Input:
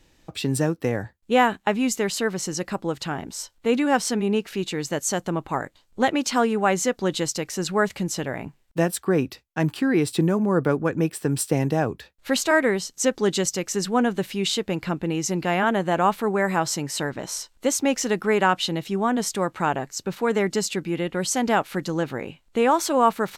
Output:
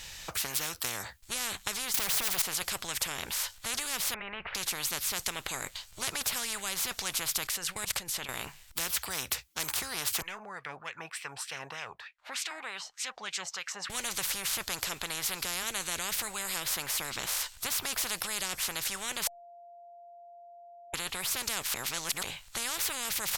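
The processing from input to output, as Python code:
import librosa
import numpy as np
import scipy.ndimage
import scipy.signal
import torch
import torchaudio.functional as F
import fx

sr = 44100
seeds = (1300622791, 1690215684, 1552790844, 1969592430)

y = fx.leveller(x, sr, passes=5, at=(1.94, 2.42))
y = fx.ellip_lowpass(y, sr, hz=2200.0, order=4, stop_db=70, at=(4.14, 4.55))
y = fx.level_steps(y, sr, step_db=21, at=(7.47, 8.29))
y = fx.wah_lfo(y, sr, hz=3.3, low_hz=700.0, high_hz=2400.0, q=5.3, at=(10.22, 13.9))
y = fx.edit(y, sr, fx.bleep(start_s=19.27, length_s=1.67, hz=693.0, db=-20.5),
    fx.reverse_span(start_s=21.74, length_s=0.49), tone=tone)
y = fx.tone_stack(y, sr, knobs='10-0-10')
y = fx.spectral_comp(y, sr, ratio=10.0)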